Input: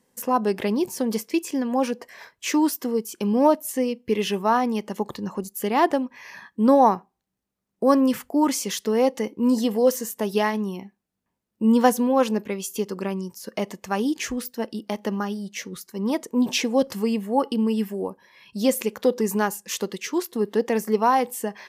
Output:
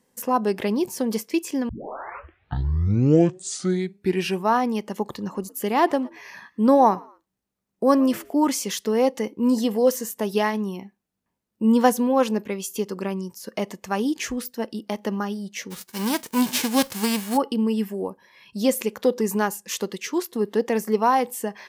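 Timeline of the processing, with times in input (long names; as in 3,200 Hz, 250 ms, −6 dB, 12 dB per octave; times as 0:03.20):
0:01.69: tape start 2.79 s
0:05.07–0:08.41: echo with shifted repeats 115 ms, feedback 33%, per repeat +74 Hz, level −24 dB
0:15.70–0:17.36: spectral envelope flattened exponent 0.3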